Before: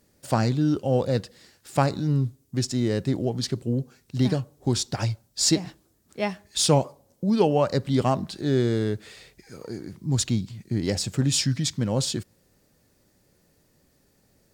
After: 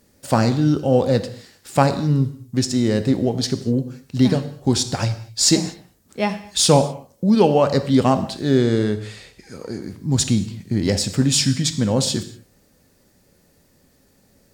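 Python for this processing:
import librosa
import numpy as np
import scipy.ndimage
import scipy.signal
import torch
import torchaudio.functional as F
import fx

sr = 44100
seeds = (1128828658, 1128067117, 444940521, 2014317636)

y = fx.lowpass(x, sr, hz=12000.0, slope=12, at=(8.59, 9.82))
y = fx.rev_gated(y, sr, seeds[0], gate_ms=270, shape='falling', drr_db=9.5)
y = y * librosa.db_to_amplitude(5.5)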